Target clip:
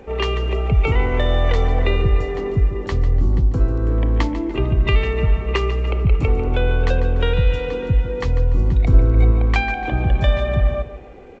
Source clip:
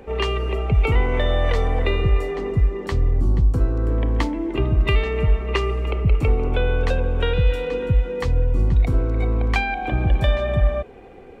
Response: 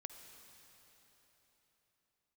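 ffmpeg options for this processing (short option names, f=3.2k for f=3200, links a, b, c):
-filter_complex "[0:a]asettb=1/sr,asplit=3[a][b][c];[a]atrim=end=8.844[d];[b]atrim=start=8.84:end=9.31,asetpts=PTS-STARTPTS,afade=t=in:d=0.004:c=qsin,afade=t=out:st=0.466:d=0.004:c=qsin,lowshelf=f=160:g=7[e];[c]atrim=start=9.306[f];[d][e]acrossfade=d=0.004:c1=hsin:c2=qsin[g];[g][f]acrossfade=d=0.004:c1=qsin:c2=hsin,aecho=1:1:146|292|438|584:0.224|0.0806|0.029|0.0104,volume=1dB" -ar 16000 -c:a g722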